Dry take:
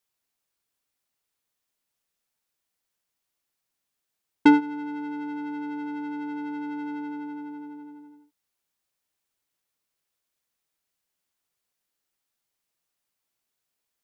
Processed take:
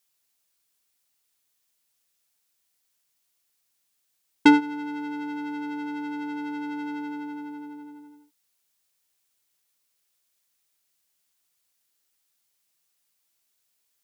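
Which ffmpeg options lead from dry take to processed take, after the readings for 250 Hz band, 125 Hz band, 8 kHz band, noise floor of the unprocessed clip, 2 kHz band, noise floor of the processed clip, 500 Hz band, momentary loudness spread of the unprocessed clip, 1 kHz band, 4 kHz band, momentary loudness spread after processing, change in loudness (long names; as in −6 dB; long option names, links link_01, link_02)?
0.0 dB, 0.0 dB, can't be measured, −83 dBFS, +3.0 dB, −74 dBFS, +0.5 dB, 20 LU, +1.0 dB, +6.5 dB, 20 LU, +0.5 dB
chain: -af "highshelf=frequency=2400:gain=9.5"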